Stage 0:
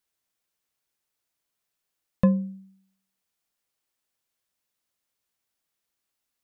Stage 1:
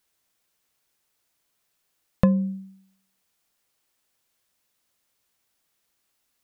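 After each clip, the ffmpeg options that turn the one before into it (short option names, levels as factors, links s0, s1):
-af "acompressor=threshold=0.0562:ratio=3,volume=2.51"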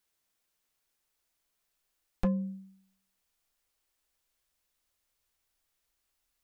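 -af "asubboost=boost=8:cutoff=55,asoftclip=type=hard:threshold=0.178,volume=0.501"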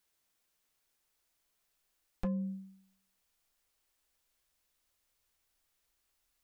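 -af "alimiter=level_in=1.68:limit=0.0631:level=0:latency=1:release=255,volume=0.596,volume=1.12"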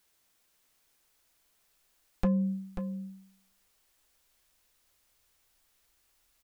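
-af "aecho=1:1:538:0.355,volume=2.37"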